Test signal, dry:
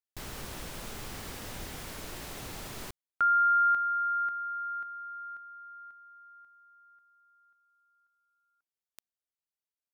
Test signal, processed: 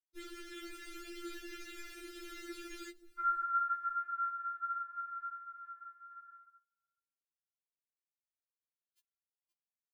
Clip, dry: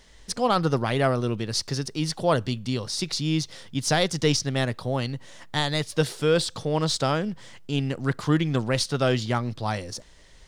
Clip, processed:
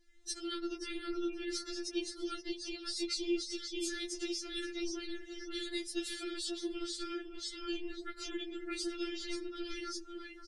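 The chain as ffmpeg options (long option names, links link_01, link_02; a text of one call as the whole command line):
ffmpeg -i in.wav -filter_complex "[0:a]afftfilt=real='re*(1-between(b*sr/4096,480,1200))':imag='im*(1-between(b*sr/4096,480,1200))':win_size=4096:overlap=0.75,aecho=1:1:526|1052|1578:0.282|0.0705|0.0176,agate=range=-58dB:threshold=-56dB:ratio=3:release=419:detection=rms,afftdn=noise_reduction=19:noise_floor=-47,acrossover=split=93|390|2100|7900[link_01][link_02][link_03][link_04][link_05];[link_01]acompressor=threshold=-54dB:ratio=3[link_06];[link_02]acompressor=threshold=-27dB:ratio=5[link_07];[link_03]acompressor=threshold=-49dB:ratio=2[link_08];[link_04]acompressor=threshold=-34dB:ratio=4[link_09];[link_05]acompressor=threshold=-50dB:ratio=2[link_10];[link_06][link_07][link_08][link_09][link_10]amix=inputs=5:normalize=0,afftfilt=real='hypot(re,im)*cos(2*PI*random(0))':imag='hypot(re,im)*sin(2*PI*random(1))':win_size=512:overlap=0.75,acompressor=threshold=-46dB:ratio=5:attack=72:release=60:knee=6:detection=peak,afftfilt=real='re*4*eq(mod(b,16),0)':imag='im*4*eq(mod(b,16),0)':win_size=2048:overlap=0.75,volume=7.5dB" out.wav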